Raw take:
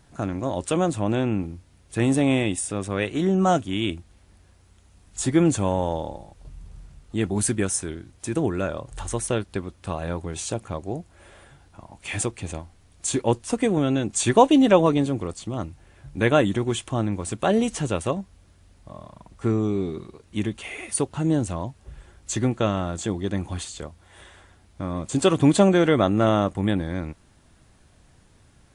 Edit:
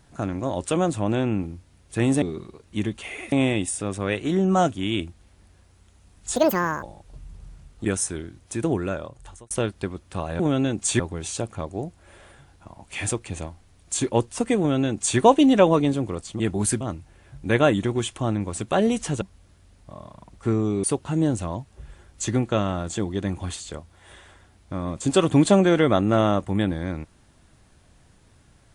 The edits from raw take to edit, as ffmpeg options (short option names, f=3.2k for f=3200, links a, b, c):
-filter_complex "[0:a]asplit=13[a][b][c][d][e][f][g][h][i][j][k][l][m];[a]atrim=end=2.222[n];[b]atrim=start=19.818:end=20.922[o];[c]atrim=start=2.218:end=5.264[p];[d]atrim=start=5.26:end=6.14,asetpts=PTS-STARTPTS,asetrate=83349,aresample=44100,atrim=end_sample=20533,asetpts=PTS-STARTPTS[q];[e]atrim=start=6.136:end=7.162[r];[f]atrim=start=7.568:end=9.23,asetpts=PTS-STARTPTS,afade=t=out:st=0.942:d=0.72[s];[g]atrim=start=9.23:end=10.122,asetpts=PTS-STARTPTS,afade=t=in:d=0.004:c=hsin[t];[h]atrim=start=13.708:end=14.312[u];[i]atrim=start=10.118:end=15.522[v];[j]atrim=start=7.158:end=7.572[w];[k]atrim=start=15.518:end=17.932[x];[l]atrim=start=18.198:end=19.822[y];[m]atrim=start=20.918[z];[n][o]acrossfade=d=0.004:c1=hsin:c2=hsin[aa];[aa][p]acrossfade=d=0.004:c1=hsin:c2=hsin[ab];[ab][q]acrossfade=d=0.004:c1=hsin:c2=hsin[ac];[ac][r]acrossfade=d=0.004:c1=hsin:c2=hsin[ad];[s][t]concat=n=2:v=0:a=1[ae];[ad][ae]acrossfade=d=0.004:c1=hsin:c2=hsin[af];[af][u]acrossfade=d=0.004:c1=hsin:c2=hsin[ag];[ag][v]acrossfade=d=0.004:c1=hsin:c2=hsin[ah];[ah][w]acrossfade=d=0.004:c1=hsin:c2=hsin[ai];[ai][x]acrossfade=d=0.004:c1=hsin:c2=hsin[aj];[aj][y]acrossfade=d=0.004:c1=hsin:c2=hsin[ak];[ak][z]acrossfade=d=0.004:c1=hsin:c2=hsin"